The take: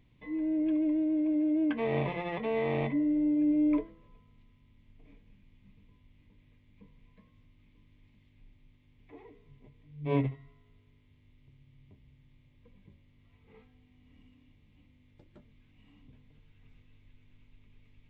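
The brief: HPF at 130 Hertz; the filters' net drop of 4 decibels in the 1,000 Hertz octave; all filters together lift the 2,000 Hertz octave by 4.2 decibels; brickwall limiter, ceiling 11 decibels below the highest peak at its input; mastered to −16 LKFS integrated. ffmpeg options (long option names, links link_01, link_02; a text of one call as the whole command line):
ffmpeg -i in.wav -af "highpass=130,equalizer=frequency=1000:width_type=o:gain=-6.5,equalizer=frequency=2000:width_type=o:gain=6,volume=19.5dB,alimiter=limit=-9.5dB:level=0:latency=1" out.wav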